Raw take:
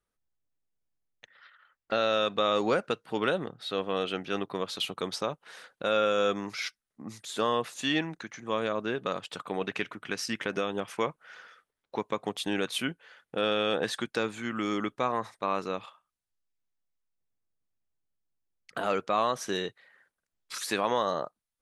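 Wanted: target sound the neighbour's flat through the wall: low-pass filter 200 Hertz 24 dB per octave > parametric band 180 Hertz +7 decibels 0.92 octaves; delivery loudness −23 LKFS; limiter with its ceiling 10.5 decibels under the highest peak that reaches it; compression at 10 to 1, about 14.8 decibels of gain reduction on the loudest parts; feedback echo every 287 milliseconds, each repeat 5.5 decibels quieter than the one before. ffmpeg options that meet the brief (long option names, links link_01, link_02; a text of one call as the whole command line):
ffmpeg -i in.wav -af "acompressor=threshold=-37dB:ratio=10,alimiter=level_in=7.5dB:limit=-24dB:level=0:latency=1,volume=-7.5dB,lowpass=frequency=200:width=0.5412,lowpass=frequency=200:width=1.3066,equalizer=frequency=180:width_type=o:width=0.92:gain=7,aecho=1:1:287|574|861|1148|1435|1722|2009:0.531|0.281|0.149|0.079|0.0419|0.0222|0.0118,volume=28.5dB" out.wav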